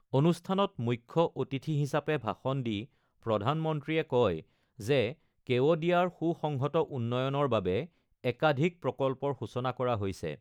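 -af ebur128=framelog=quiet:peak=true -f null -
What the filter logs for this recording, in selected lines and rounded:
Integrated loudness:
  I:         -30.9 LUFS
  Threshold: -41.2 LUFS
Loudness range:
  LRA:         2.1 LU
  Threshold: -51.1 LUFS
  LRA low:   -32.2 LUFS
  LRA high:  -30.1 LUFS
True peak:
  Peak:      -13.0 dBFS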